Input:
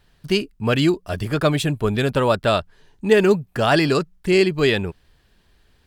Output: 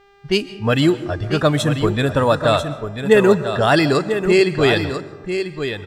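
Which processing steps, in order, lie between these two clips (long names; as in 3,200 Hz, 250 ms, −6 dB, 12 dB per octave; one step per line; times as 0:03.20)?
hum with harmonics 400 Hz, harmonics 22, −44 dBFS −4 dB per octave
low-pass that shuts in the quiet parts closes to 2,500 Hz, open at −14.5 dBFS
bit reduction 12 bits
noise reduction from a noise print of the clip's start 10 dB
single-tap delay 992 ms −8.5 dB
comb and all-pass reverb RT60 1.3 s, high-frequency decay 0.35×, pre-delay 90 ms, DRR 15 dB
level +2.5 dB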